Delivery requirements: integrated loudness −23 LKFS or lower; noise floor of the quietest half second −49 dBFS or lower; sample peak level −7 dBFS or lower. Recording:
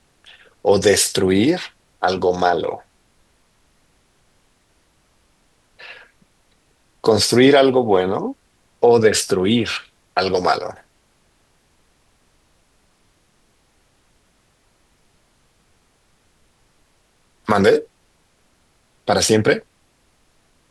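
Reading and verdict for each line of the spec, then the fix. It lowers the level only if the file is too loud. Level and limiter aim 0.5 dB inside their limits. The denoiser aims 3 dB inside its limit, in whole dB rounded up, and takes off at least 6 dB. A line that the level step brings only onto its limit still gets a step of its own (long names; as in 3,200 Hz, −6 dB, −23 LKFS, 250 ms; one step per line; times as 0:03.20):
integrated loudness −17.5 LKFS: out of spec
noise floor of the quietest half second −60 dBFS: in spec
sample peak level −2.5 dBFS: out of spec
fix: level −6 dB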